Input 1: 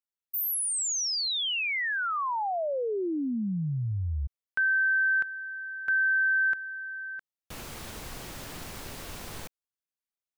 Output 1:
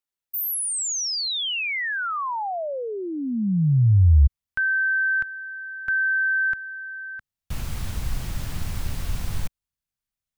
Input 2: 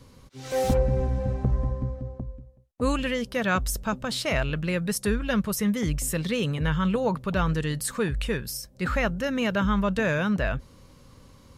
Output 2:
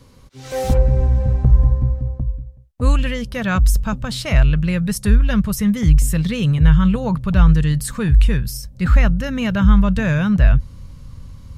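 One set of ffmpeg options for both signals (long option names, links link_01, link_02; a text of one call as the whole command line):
ffmpeg -i in.wav -af "asubboost=boost=7:cutoff=140,volume=3dB" out.wav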